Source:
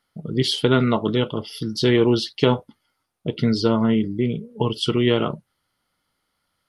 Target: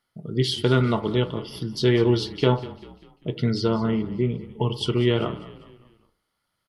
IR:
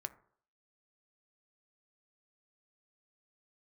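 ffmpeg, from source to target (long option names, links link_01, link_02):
-filter_complex "[0:a]asplit=5[link_01][link_02][link_03][link_04][link_05];[link_02]adelay=197,afreqshift=-32,volume=-17dB[link_06];[link_03]adelay=394,afreqshift=-64,volume=-23.6dB[link_07];[link_04]adelay=591,afreqshift=-96,volume=-30.1dB[link_08];[link_05]adelay=788,afreqshift=-128,volume=-36.7dB[link_09];[link_01][link_06][link_07][link_08][link_09]amix=inputs=5:normalize=0[link_10];[1:a]atrim=start_sample=2205[link_11];[link_10][link_11]afir=irnorm=-1:irlink=0,asettb=1/sr,asplit=3[link_12][link_13][link_14];[link_12]atrim=end=3.914[link_15];[link_13]atrim=start=3.91:end=4.54,asetpts=PTS-STARTPTS,afade=type=in:duration=0.004:curve=qsin,afade=type=out:start_time=0.626:duration=0.004:curve=qsin,acrossover=split=3100[link_16][link_17];[link_17]acompressor=threshold=-58dB:ratio=4:attack=1:release=60[link_18];[link_16][link_18]amix=inputs=2:normalize=0[link_19];[link_14]atrim=start=4.536[link_20];[link_15][link_19]acrossfade=duration=0.004:curve1=hsin:curve2=qsin[link_21];[link_21][link_20]acrossfade=duration=0.004:curve1=qsin:curve2=hsin,volume=-1dB"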